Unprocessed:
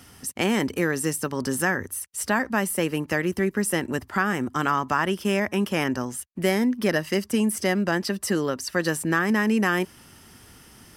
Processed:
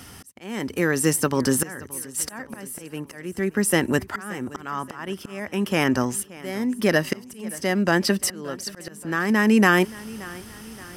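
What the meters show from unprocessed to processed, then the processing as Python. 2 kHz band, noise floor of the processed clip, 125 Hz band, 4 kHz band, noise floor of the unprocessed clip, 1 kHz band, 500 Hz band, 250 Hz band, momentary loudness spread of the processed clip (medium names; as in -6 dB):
+0.5 dB, -46 dBFS, +1.0 dB, +1.0 dB, -51 dBFS, -1.5 dB, +0.5 dB, +1.0 dB, 15 LU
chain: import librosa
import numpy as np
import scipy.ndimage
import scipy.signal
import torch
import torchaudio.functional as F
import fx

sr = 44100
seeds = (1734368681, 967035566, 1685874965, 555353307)

y = fx.auto_swell(x, sr, attack_ms=722.0)
y = fx.echo_feedback(y, sr, ms=576, feedback_pct=50, wet_db=-20)
y = y * 10.0 ** (6.0 / 20.0)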